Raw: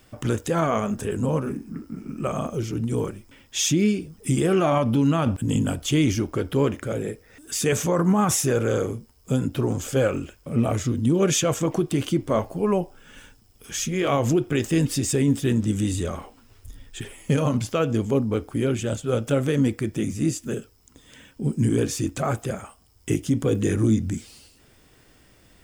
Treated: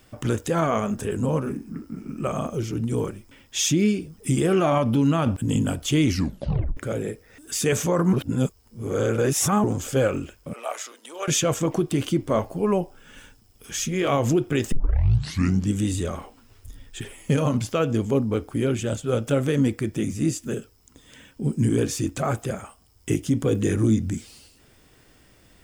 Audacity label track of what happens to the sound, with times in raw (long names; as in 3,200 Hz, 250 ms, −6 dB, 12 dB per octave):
6.080000	6.080000	tape stop 0.69 s
8.130000	9.640000	reverse
10.530000	11.280000	high-pass filter 640 Hz 24 dB per octave
14.720000	14.720000	tape start 1.01 s